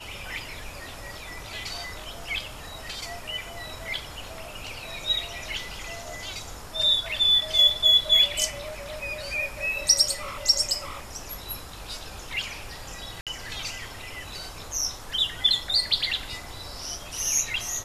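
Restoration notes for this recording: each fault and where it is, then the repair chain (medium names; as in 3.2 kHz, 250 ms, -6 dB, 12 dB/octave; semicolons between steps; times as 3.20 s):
13.21–13.27 s: dropout 57 ms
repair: interpolate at 13.21 s, 57 ms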